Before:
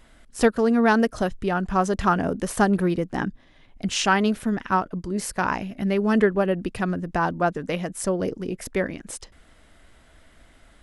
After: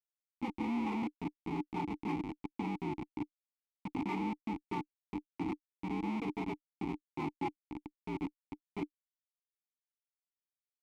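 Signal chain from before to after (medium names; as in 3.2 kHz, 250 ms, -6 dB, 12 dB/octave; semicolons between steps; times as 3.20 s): frequency axis rescaled in octaves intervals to 117%; Schmitt trigger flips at -22 dBFS; vowel filter u; trim +5.5 dB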